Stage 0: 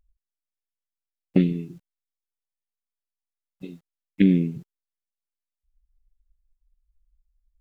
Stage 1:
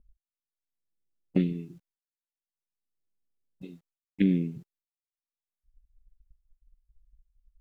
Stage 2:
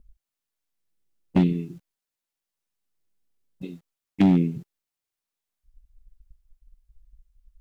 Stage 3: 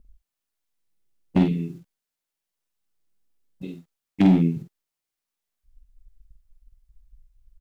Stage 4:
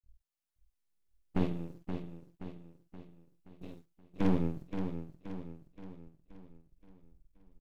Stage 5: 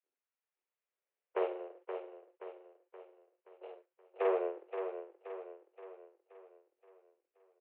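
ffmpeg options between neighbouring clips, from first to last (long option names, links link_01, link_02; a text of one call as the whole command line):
ffmpeg -i in.wav -filter_complex "[0:a]agate=range=-33dB:threshold=-57dB:ratio=3:detection=peak,acrossover=split=480[link_01][link_02];[link_01]acompressor=mode=upward:threshold=-36dB:ratio=2.5[link_03];[link_03][link_02]amix=inputs=2:normalize=0,volume=-6dB" out.wav
ffmpeg -i in.wav -af "asoftclip=type=hard:threshold=-19.5dB,volume=7.5dB" out.wav
ffmpeg -i in.wav -filter_complex "[0:a]asplit=2[link_01][link_02];[link_02]adelay=48,volume=-5dB[link_03];[link_01][link_03]amix=inputs=2:normalize=0" out.wav
ffmpeg -i in.wav -af "aeval=exprs='max(val(0),0)':channel_layout=same,aecho=1:1:525|1050|1575|2100|2625|3150:0.398|0.195|0.0956|0.0468|0.023|0.0112,volume=-7.5dB" out.wav
ffmpeg -i in.wav -af "highpass=frequency=220:width_type=q:width=0.5412,highpass=frequency=220:width_type=q:width=1.307,lowpass=frequency=2600:width_type=q:width=0.5176,lowpass=frequency=2600:width_type=q:width=0.7071,lowpass=frequency=2600:width_type=q:width=1.932,afreqshift=190,volume=1dB" out.wav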